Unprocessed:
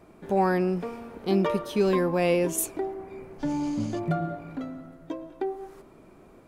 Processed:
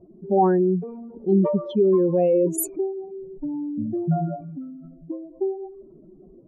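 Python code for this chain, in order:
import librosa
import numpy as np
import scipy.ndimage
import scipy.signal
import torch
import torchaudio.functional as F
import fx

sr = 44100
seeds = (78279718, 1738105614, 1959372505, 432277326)

y = fx.spec_expand(x, sr, power=2.5)
y = fx.env_lowpass(y, sr, base_hz=580.0, full_db=-23.0)
y = y + 0.39 * np.pad(y, (int(5.4 * sr / 1000.0), 0))[:len(y)]
y = y * 10.0 ** (3.0 / 20.0)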